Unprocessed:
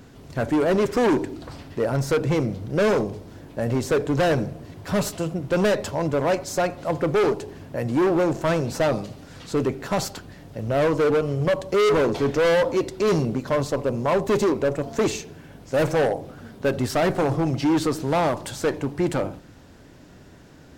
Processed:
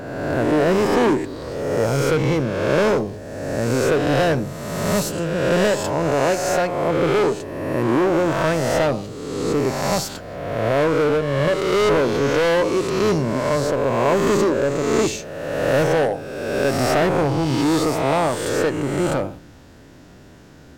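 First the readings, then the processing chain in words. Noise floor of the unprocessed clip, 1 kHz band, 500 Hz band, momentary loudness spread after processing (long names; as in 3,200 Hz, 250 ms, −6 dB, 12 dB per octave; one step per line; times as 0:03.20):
−47 dBFS, +4.5 dB, +3.5 dB, 8 LU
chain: peak hold with a rise ahead of every peak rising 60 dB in 1.57 s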